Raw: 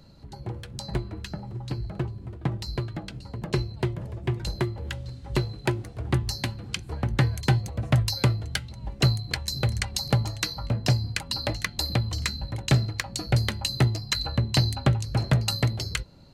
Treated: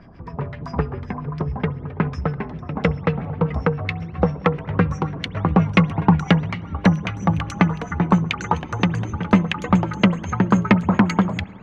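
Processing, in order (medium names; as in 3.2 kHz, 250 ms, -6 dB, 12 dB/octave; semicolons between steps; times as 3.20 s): gliding tape speed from 119% -> 162%; LFO low-pass sine 7.5 Hz 920–2500 Hz; spring tank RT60 2.1 s, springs 60 ms, chirp 55 ms, DRR 20 dB; trim +6.5 dB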